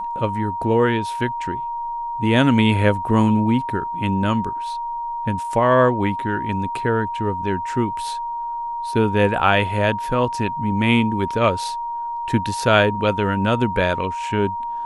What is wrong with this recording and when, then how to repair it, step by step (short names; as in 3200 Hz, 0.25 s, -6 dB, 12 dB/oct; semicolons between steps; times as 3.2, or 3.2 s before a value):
tone 940 Hz -24 dBFS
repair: notch 940 Hz, Q 30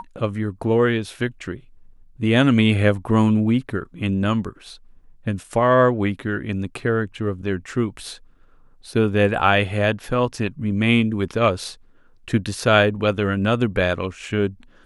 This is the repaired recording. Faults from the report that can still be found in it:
none